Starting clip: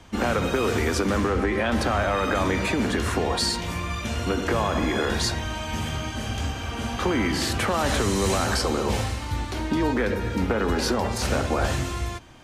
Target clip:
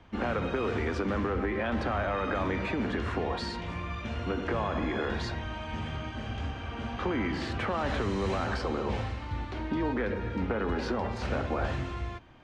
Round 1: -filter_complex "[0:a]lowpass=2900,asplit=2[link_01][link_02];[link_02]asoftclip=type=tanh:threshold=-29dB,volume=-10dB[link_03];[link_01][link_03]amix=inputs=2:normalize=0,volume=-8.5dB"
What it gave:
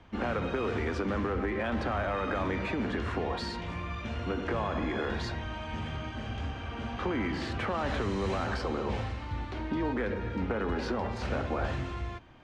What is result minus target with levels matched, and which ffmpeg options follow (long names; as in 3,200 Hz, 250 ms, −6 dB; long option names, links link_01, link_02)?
soft clipping: distortion +11 dB
-filter_complex "[0:a]lowpass=2900,asplit=2[link_01][link_02];[link_02]asoftclip=type=tanh:threshold=-17.5dB,volume=-10dB[link_03];[link_01][link_03]amix=inputs=2:normalize=0,volume=-8.5dB"